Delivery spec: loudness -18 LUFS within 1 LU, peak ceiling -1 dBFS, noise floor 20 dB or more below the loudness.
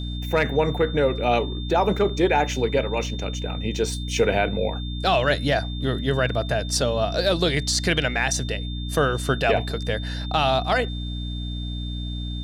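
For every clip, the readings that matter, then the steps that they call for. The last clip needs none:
hum 60 Hz; harmonics up to 300 Hz; hum level -27 dBFS; steady tone 3600 Hz; tone level -37 dBFS; loudness -23.5 LUFS; peak -8.0 dBFS; loudness target -18.0 LUFS
-> de-hum 60 Hz, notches 5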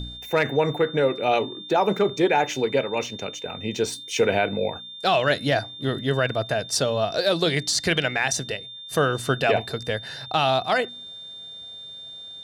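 hum none; steady tone 3600 Hz; tone level -37 dBFS
-> notch 3600 Hz, Q 30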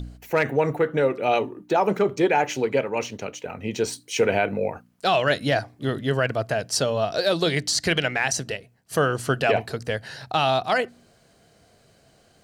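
steady tone none; loudness -24.0 LUFS; peak -9.0 dBFS; loudness target -18.0 LUFS
-> gain +6 dB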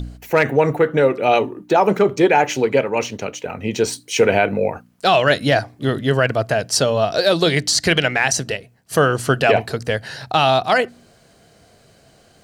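loudness -18.0 LUFS; peak -3.0 dBFS; noise floor -53 dBFS

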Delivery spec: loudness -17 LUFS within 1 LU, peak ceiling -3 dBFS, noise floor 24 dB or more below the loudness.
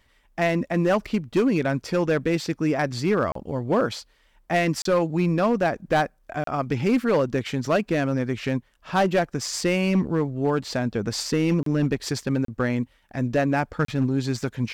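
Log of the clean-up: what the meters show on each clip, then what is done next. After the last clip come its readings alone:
clipped 1.1%; flat tops at -14.5 dBFS; dropouts 6; longest dropout 33 ms; loudness -24.5 LUFS; peak -14.5 dBFS; loudness target -17.0 LUFS
-> clip repair -14.5 dBFS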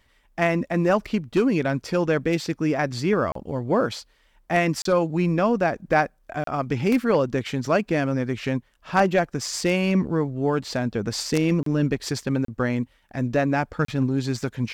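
clipped 0.0%; dropouts 6; longest dropout 33 ms
-> interpolate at 3.32/4.82/6.44/11.63/12.45/13.85, 33 ms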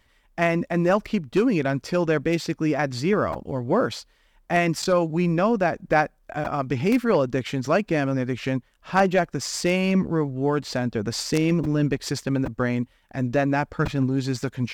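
dropouts 0; loudness -24.0 LUFS; peak -5.5 dBFS; loudness target -17.0 LUFS
-> gain +7 dB; limiter -3 dBFS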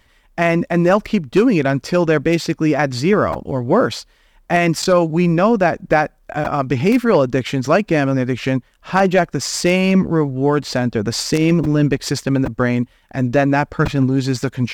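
loudness -17.0 LUFS; peak -3.0 dBFS; noise floor -55 dBFS

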